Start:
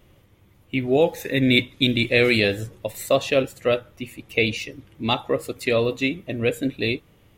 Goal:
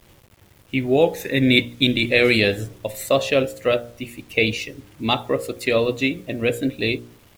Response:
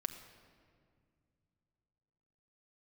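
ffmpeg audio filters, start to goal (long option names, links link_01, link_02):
-af "bandreject=frequency=59.34:width_type=h:width=4,bandreject=frequency=118.68:width_type=h:width=4,bandreject=frequency=178.02:width_type=h:width=4,bandreject=frequency=237.36:width_type=h:width=4,bandreject=frequency=296.7:width_type=h:width=4,bandreject=frequency=356.04:width_type=h:width=4,bandreject=frequency=415.38:width_type=h:width=4,bandreject=frequency=474.72:width_type=h:width=4,bandreject=frequency=534.06:width_type=h:width=4,bandreject=frequency=593.4:width_type=h:width=4,bandreject=frequency=652.74:width_type=h:width=4,bandreject=frequency=712.08:width_type=h:width=4,acrusher=bits=8:mix=0:aa=0.000001,volume=2dB"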